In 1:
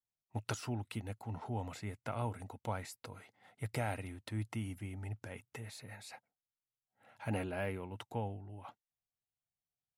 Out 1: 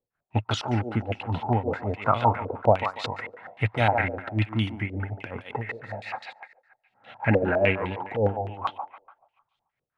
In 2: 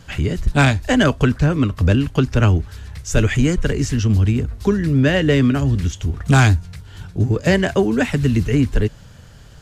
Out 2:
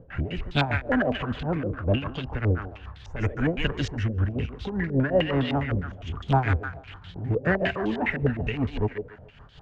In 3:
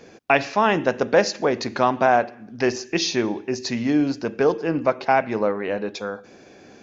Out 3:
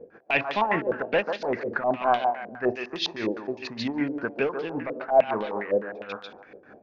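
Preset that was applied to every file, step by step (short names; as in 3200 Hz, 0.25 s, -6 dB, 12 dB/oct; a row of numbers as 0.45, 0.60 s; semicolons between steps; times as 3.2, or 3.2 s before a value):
soft clip -12 dBFS; tremolo 5.2 Hz, depth 77%; on a send: thinning echo 0.144 s, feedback 47%, high-pass 490 Hz, level -5 dB; on the sum: stepped low-pass 9.8 Hz 500–3500 Hz; match loudness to -27 LUFS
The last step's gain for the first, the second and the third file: +15.5, -5.0, -4.0 dB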